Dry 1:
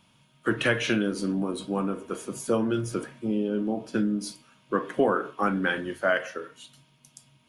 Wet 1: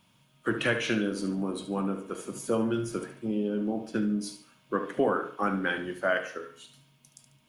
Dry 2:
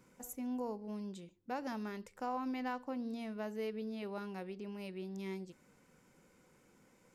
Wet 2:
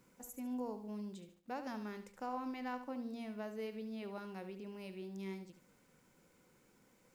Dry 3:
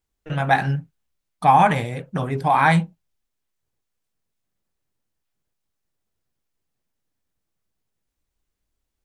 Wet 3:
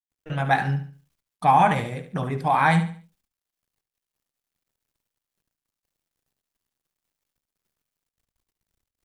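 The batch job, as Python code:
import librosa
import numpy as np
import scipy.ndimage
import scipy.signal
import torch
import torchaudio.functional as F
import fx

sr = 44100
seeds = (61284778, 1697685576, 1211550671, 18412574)

y = fx.quant_dither(x, sr, seeds[0], bits=12, dither='none')
y = fx.echo_feedback(y, sr, ms=72, feedback_pct=33, wet_db=-11.0)
y = fx.end_taper(y, sr, db_per_s=330.0)
y = y * 10.0 ** (-3.0 / 20.0)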